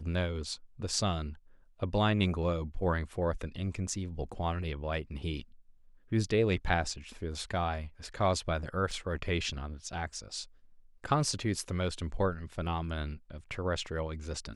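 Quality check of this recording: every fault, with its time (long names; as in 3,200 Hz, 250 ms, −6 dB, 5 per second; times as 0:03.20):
0:08.91: drop-out 3.5 ms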